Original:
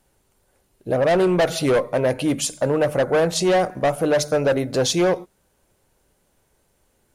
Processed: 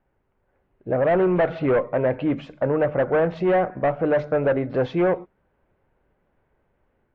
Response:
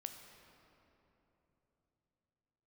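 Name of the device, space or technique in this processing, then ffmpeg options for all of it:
action camera in a waterproof case: -af "lowpass=f=2200:w=0.5412,lowpass=f=2200:w=1.3066,dynaudnorm=f=370:g=3:m=1.5,volume=0.562" -ar 22050 -c:a aac -b:a 48k

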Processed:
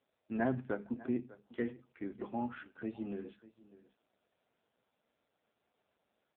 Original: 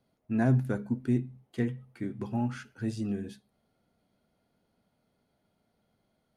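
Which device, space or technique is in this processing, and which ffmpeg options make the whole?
satellite phone: -af "highpass=340,lowpass=3300,aecho=1:1:598:0.112" -ar 8000 -c:a libopencore_amrnb -b:a 5900

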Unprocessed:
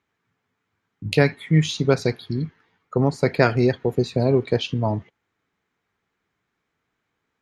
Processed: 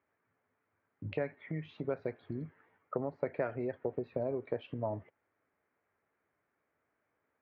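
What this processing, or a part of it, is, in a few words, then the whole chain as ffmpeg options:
bass amplifier: -af "acompressor=threshold=0.0355:ratio=6,highpass=84,equalizer=f=130:t=q:w=4:g=-6,equalizer=f=190:t=q:w=4:g=-8,equalizer=f=590:t=q:w=4:g=9,lowpass=f=2200:w=0.5412,lowpass=f=2200:w=1.3066,volume=0.631"

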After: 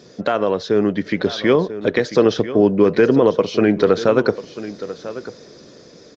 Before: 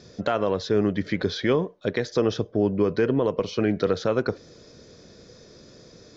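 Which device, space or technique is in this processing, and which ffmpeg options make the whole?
video call: -af "highpass=160,aecho=1:1:992:0.188,dynaudnorm=f=280:g=11:m=1.5,volume=1.88" -ar 48000 -c:a libopus -b:a 20k

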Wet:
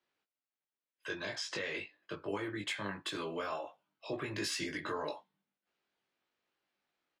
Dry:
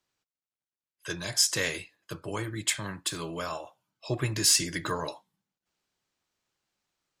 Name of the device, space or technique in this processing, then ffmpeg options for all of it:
DJ mixer with the lows and highs turned down: -filter_complex "[0:a]acrossover=split=210 3800:gain=0.2 1 0.126[s0][s1][s2];[s0][s1][s2]amix=inputs=3:normalize=0,alimiter=level_in=1.5:limit=0.0631:level=0:latency=1:release=95,volume=0.668,asettb=1/sr,asplit=3[s3][s4][s5];[s3]atrim=end=1.084[s6];[s4]atrim=start=1.08:end=2.29,asetpts=PTS-STARTPTS,afade=t=in:d=0.004:c=qsin,afade=t=out:st=1.206:d=0.004:c=qsin,lowpass=6000[s7];[s5]atrim=start=2.286[s8];[s6][s7]acrossfade=d=0.004:c1=hsin:c2=qsin[s9];[s9][s8]acrossfade=d=0.004:c1=qsin:c2=hsin,equalizer=f=1000:t=o:w=0.77:g=-2.5,asplit=2[s10][s11];[s11]adelay=20,volume=0.708[s12];[s10][s12]amix=inputs=2:normalize=0,volume=0.891"

